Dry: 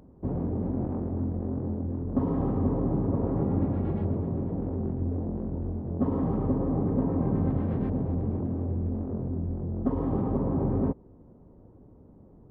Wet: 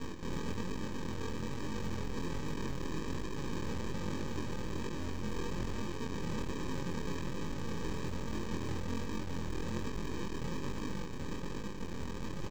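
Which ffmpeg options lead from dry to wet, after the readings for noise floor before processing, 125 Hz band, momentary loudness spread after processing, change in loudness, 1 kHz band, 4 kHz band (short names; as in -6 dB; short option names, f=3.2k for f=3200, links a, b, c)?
-53 dBFS, -11.5 dB, 3 LU, -10.5 dB, -4.5 dB, n/a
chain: -af "bandreject=f=50:t=h:w=6,bandreject=f=100:t=h:w=6,bandreject=f=150:t=h:w=6,bandreject=f=200:t=h:w=6,aecho=1:1:5.1:0.43,areverse,acompressor=threshold=-37dB:ratio=12,areverse,alimiter=level_in=19dB:limit=-24dB:level=0:latency=1:release=266,volume=-19dB,aeval=exprs='0.0075*(cos(1*acos(clip(val(0)/0.0075,-1,1)))-cos(1*PI/2))+0.00335*(cos(6*acos(clip(val(0)/0.0075,-1,1)))-cos(6*PI/2))+0.000188*(cos(8*acos(clip(val(0)/0.0075,-1,1)))-cos(8*PI/2))':c=same,aresample=16000,acrusher=samples=23:mix=1:aa=0.000001,aresample=44100,flanger=delay=19.5:depth=6:speed=1.2,acrusher=bits=7:mode=log:mix=0:aa=0.000001,volume=12.5dB"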